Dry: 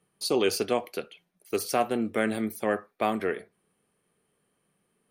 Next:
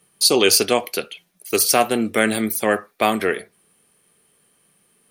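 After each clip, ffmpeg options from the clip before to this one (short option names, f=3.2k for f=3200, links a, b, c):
-af "highshelf=f=2.5k:g=11.5,volume=7dB"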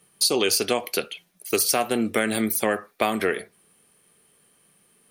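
-af "acompressor=threshold=-18dB:ratio=6"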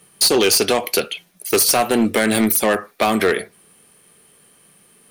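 -af "volume=19dB,asoftclip=hard,volume=-19dB,volume=8.5dB"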